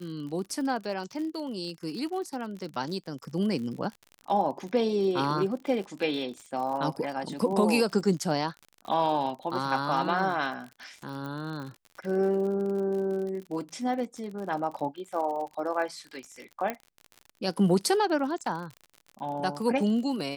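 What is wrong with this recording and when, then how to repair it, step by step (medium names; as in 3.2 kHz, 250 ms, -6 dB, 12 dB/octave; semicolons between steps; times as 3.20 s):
crackle 52 per s -36 dBFS
11.26 s: pop -26 dBFS
16.70 s: pop -17 dBFS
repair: de-click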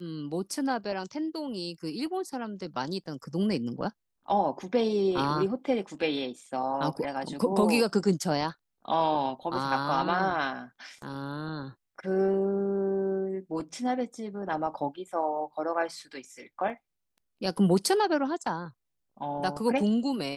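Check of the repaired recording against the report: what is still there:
11.26 s: pop
16.70 s: pop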